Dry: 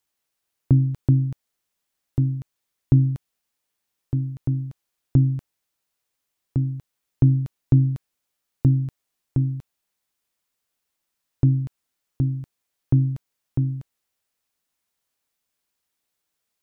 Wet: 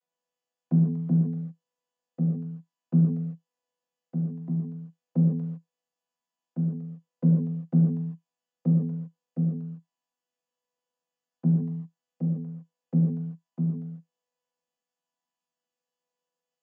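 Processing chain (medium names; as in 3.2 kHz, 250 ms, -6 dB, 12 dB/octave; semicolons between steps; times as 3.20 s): vocoder on a held chord bare fifth, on E3; resonant low shelf 410 Hz -6.5 dB, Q 1.5; gated-style reverb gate 180 ms flat, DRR -3.5 dB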